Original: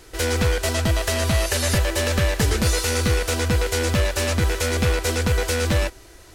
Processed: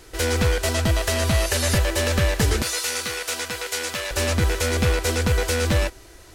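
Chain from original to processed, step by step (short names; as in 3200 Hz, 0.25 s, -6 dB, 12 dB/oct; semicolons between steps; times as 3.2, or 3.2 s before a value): 2.62–4.11 HPF 1200 Hz 6 dB/oct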